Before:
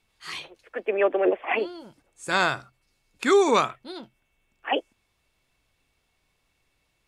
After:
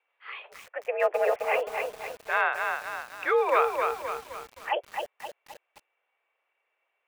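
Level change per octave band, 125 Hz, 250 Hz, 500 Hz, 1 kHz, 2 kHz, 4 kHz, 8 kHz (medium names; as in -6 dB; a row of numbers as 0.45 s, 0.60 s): under -15 dB, -20.0 dB, -3.0 dB, 0.0 dB, -0.5 dB, -9.0 dB, -9.0 dB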